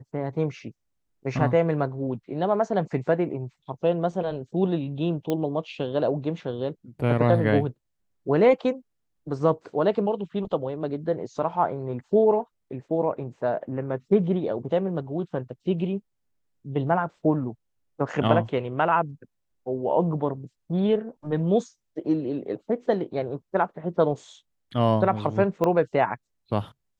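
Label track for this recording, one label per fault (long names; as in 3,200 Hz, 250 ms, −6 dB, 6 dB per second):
5.300000	5.300000	click −14 dBFS
25.640000	25.640000	click −13 dBFS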